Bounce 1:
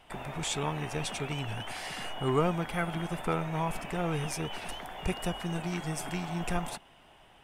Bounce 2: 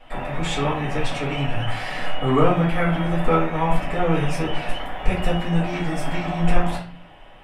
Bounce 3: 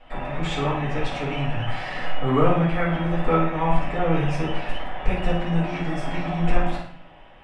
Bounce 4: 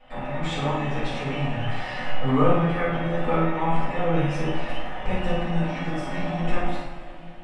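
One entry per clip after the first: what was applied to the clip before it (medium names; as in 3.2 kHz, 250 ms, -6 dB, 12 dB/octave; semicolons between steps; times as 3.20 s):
tone controls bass -1 dB, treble -11 dB; reverberation RT60 0.40 s, pre-delay 4 ms, DRR -7 dB; trim +1.5 dB
distance through air 78 m; on a send: flutter echo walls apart 9.4 m, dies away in 0.42 s; on the sum: trim -2 dB
two-slope reverb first 0.37 s, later 3.6 s, from -18 dB, DRR -1.5 dB; trim -4.5 dB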